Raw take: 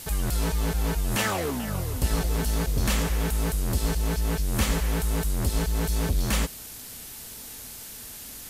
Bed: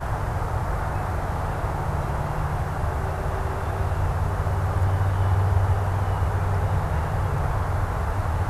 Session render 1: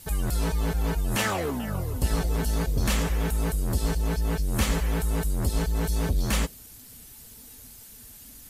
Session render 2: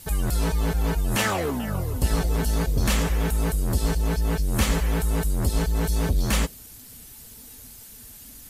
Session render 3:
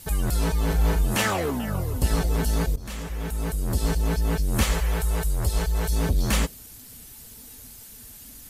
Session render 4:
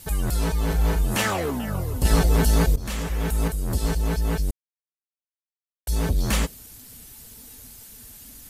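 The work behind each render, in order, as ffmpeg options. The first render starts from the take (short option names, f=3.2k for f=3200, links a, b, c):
-af "afftdn=nr=10:nf=-41"
-af "volume=2.5dB"
-filter_complex "[0:a]asettb=1/sr,asplit=3[a][b][c];[a]atrim=end=0.664[d];[b]atrim=start=0.66:end=1.17,asetpts=PTS-STARTPTS,afade=t=in:d=0.004:c=qsin,afade=t=out:st=0.506:d=0.004:c=qsin,asplit=2[e][f];[f]adelay=38,volume=-5dB[g];[e][g]amix=inputs=2:normalize=0,atrim=end_sample=22491[h];[c]atrim=start=1.166[i];[d][h]acrossfade=d=0.004:c1=hsin:c2=qsin[j];[j][i]acrossfade=d=0.004:c1=qsin:c2=hsin,asettb=1/sr,asplit=3[k][l][m];[k]atrim=end=4.634[n];[l]atrim=start=4.63:end=5.93,asetpts=PTS-STARTPTS,afade=t=in:d=0.004:c=qsin,afade=t=out:st=1.296:d=0.004:c=qsin,equalizer=f=240:t=o:w=0.77:g=-13[o];[m]atrim=start=5.926[p];[n][o]acrossfade=d=0.004:c1=hsin:c2=qsin[q];[q][p]acrossfade=d=0.004:c1=qsin:c2=hsin,asplit=2[r][s];[r]atrim=end=2.76,asetpts=PTS-STARTPTS,afade=t=out:st=2.756:d=0.004:c=hsin:silence=0.112202[t];[s]atrim=start=2.76,asetpts=PTS-STARTPTS,afade=t=in:d=1.17:silence=0.112202[u];[t][u]concat=n=2:v=0:a=1"
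-filter_complex "[0:a]asettb=1/sr,asplit=3[a][b][c];[a]atrim=end=2.054[d];[b]atrim=start=2.05:end=3.48,asetpts=PTS-STARTPTS,afade=t=in:d=0.004:c=qsin,afade=t=out:st=1.426:d=0.004:c=qsin,acontrast=30[e];[c]atrim=start=3.476[f];[d][e]acrossfade=d=0.004:c1=hsin:c2=qsin[g];[g][f]acrossfade=d=0.004:c1=qsin:c2=hsin,asplit=3[h][i][j];[h]atrim=end=4.51,asetpts=PTS-STARTPTS,afade=t=out:st=4.506:d=0.004:c=hsin[k];[i]atrim=start=4.51:end=5.87,asetpts=PTS-STARTPTS,volume=0[l];[j]atrim=start=5.87,asetpts=PTS-STARTPTS,afade=t=in:d=0.004:c=hsin[m];[k][l][m]concat=n=3:v=0:a=1"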